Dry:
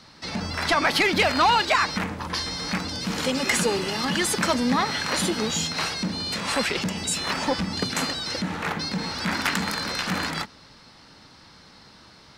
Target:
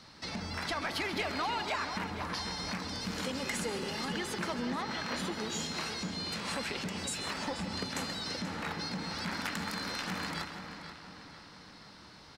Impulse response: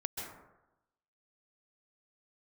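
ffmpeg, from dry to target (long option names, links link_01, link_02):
-filter_complex "[0:a]asettb=1/sr,asplit=3[link_01][link_02][link_03];[link_01]atrim=end=4.084[link_04];[link_02]atrim=start=4.08:end=5.4,asetpts=PTS-STARTPTS,afade=type=in:duration=0.004:curve=qsin,afade=type=out:start_time=1.316:duration=0.004:curve=qsin,equalizer=frequency=10000:width_type=o:width=1.1:gain=-9[link_05];[link_03]atrim=start=5.396[link_06];[link_04][link_05]acrossfade=duration=0.004:curve1=hsin:curve2=qsin[link_07];[link_07][link_06]acrossfade=duration=0.004:curve1=qsin:curve2=hsin,acompressor=threshold=-33dB:ratio=2.5,asplit=2[link_08][link_09];[link_09]adelay=483,lowpass=frequency=4300:poles=1,volume=-9dB,asplit=2[link_10][link_11];[link_11]adelay=483,lowpass=frequency=4300:poles=1,volume=0.5,asplit=2[link_12][link_13];[link_13]adelay=483,lowpass=frequency=4300:poles=1,volume=0.5,asplit=2[link_14][link_15];[link_15]adelay=483,lowpass=frequency=4300:poles=1,volume=0.5,asplit=2[link_16][link_17];[link_17]adelay=483,lowpass=frequency=4300:poles=1,volume=0.5,asplit=2[link_18][link_19];[link_19]adelay=483,lowpass=frequency=4300:poles=1,volume=0.5[link_20];[link_08][link_10][link_12][link_14][link_16][link_18][link_20]amix=inputs=7:normalize=0,asplit=2[link_21][link_22];[1:a]atrim=start_sample=2205[link_23];[link_22][link_23]afir=irnorm=-1:irlink=0,volume=-4dB[link_24];[link_21][link_24]amix=inputs=2:normalize=0,volume=-8dB"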